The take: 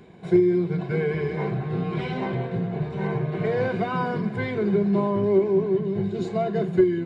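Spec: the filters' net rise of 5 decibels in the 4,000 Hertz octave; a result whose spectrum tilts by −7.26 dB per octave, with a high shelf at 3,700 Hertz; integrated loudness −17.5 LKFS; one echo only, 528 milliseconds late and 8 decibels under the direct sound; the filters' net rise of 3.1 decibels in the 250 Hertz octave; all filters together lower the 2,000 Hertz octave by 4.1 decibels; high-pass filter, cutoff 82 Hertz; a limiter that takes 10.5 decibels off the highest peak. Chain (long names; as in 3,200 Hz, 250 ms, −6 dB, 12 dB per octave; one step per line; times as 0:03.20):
high-pass filter 82 Hz
parametric band 250 Hz +5.5 dB
parametric band 2,000 Hz −8 dB
high-shelf EQ 3,700 Hz +4.5 dB
parametric band 4,000 Hz +6.5 dB
brickwall limiter −17 dBFS
single-tap delay 528 ms −8 dB
level +7.5 dB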